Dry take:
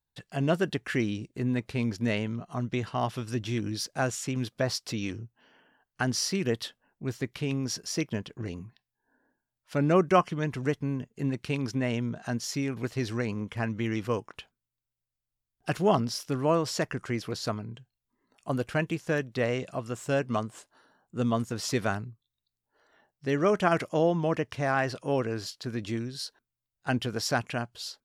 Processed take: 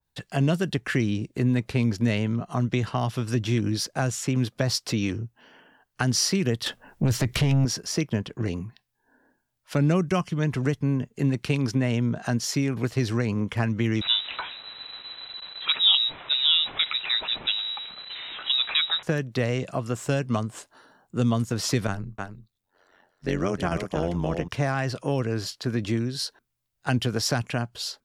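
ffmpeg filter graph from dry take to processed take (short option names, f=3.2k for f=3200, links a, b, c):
-filter_complex "[0:a]asettb=1/sr,asplit=3[a][b][c];[a]atrim=end=6.664[d];[b]atrim=start=6.66:end=7.65,asetpts=PTS-STARTPTS,afade=t=in:d=0.004:c=qsin,afade=t=out:st=0.986:d=0.004:c=qsin,asubboost=boost=8.5:cutoff=150,acompressor=threshold=-32dB:ratio=6:attack=3.2:release=140:knee=1:detection=peak,aeval=exprs='0.0668*sin(PI/2*2.51*val(0)/0.0668)':c=same[e];[c]atrim=start=7.646[f];[d][e]acrossfade=d=0.004:c1=hsin:c2=qsin[g];[g][f]acrossfade=d=0.004:c1=qsin:c2=hsin,asettb=1/sr,asplit=3[h][i][j];[h]atrim=end=14.014[k];[i]atrim=start=14.01:end=19.03,asetpts=PTS-STARTPTS,afade=t=in:d=0.004:c=qsin,afade=t=out:st=5.016:d=0.004:c=qsin,aeval=exprs='val(0)+0.5*0.0168*sgn(val(0))':c=same,lowpass=f=3.4k:t=q:w=0.5098,lowpass=f=3.4k:t=q:w=0.6013,lowpass=f=3.4k:t=q:w=0.9,lowpass=f=3.4k:t=q:w=2.563,afreqshift=-4000[l];[j]atrim=start=19.026[m];[k][l]acrossfade=d=0.004:c1=hsin:c2=qsin[n];[n][m]acrossfade=d=0.004:c1=qsin:c2=hsin,asettb=1/sr,asplit=3[o][p][q];[o]atrim=end=21.874[r];[p]atrim=start=21.87:end=24.48,asetpts=PTS-STARTPTS,afade=t=in:d=0.004:c=qsin,afade=t=out:st=2.606:d=0.004:c=qsin,tremolo=f=91:d=0.857,aecho=1:1:311:0.335,atrim=end_sample=115101[s];[q]atrim=start=24.476[t];[r][s]acrossfade=d=0.004:c1=hsin:c2=qsin[u];[u][t]acrossfade=d=0.004:c1=qsin:c2=hsin,acrossover=split=190|3000[v][w][x];[w]acompressor=threshold=-33dB:ratio=6[y];[v][y][x]amix=inputs=3:normalize=0,adynamicequalizer=threshold=0.00355:dfrequency=2300:dqfactor=0.7:tfrequency=2300:tqfactor=0.7:attack=5:release=100:ratio=0.375:range=2.5:mode=cutabove:tftype=highshelf,volume=8dB"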